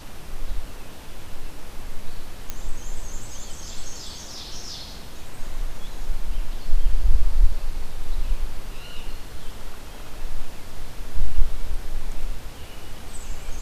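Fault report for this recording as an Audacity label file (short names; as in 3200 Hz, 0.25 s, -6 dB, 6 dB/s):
2.500000	2.500000	pop -12 dBFS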